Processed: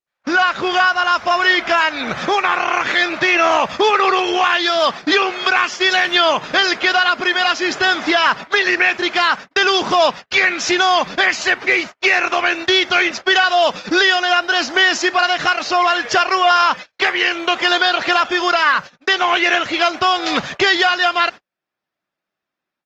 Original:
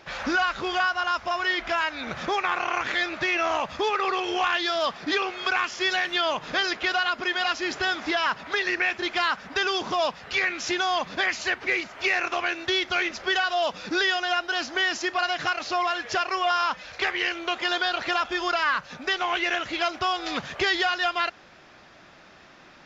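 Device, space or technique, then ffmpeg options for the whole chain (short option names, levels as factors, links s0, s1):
video call: -af "highpass=120,dynaudnorm=f=190:g=3:m=6.31,agate=range=0.00501:threshold=0.0631:ratio=16:detection=peak,volume=0.841" -ar 48000 -c:a libopus -b:a 24k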